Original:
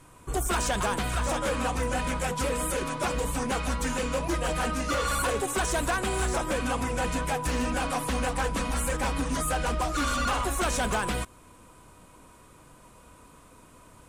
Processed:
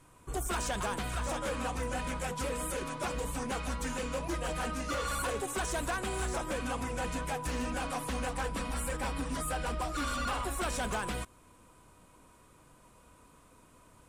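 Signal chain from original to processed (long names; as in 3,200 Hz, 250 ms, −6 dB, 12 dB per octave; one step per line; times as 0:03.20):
0:08.43–0:10.77: notch filter 6,400 Hz, Q 8.8
level −6.5 dB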